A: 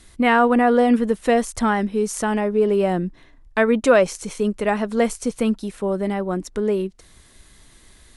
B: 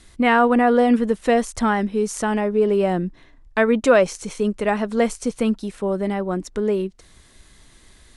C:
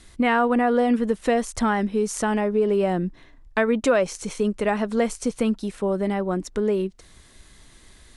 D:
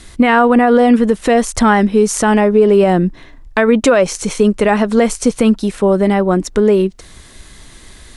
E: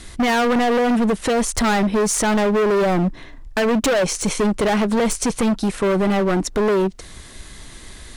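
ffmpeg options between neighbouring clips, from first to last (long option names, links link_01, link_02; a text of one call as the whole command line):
ffmpeg -i in.wav -af "lowpass=9900" out.wav
ffmpeg -i in.wav -af "acompressor=threshold=-19dB:ratio=2" out.wav
ffmpeg -i in.wav -af "alimiter=level_in=12.5dB:limit=-1dB:release=50:level=0:latency=1,volume=-1dB" out.wav
ffmpeg -i in.wav -af "volume=15.5dB,asoftclip=hard,volume=-15.5dB" out.wav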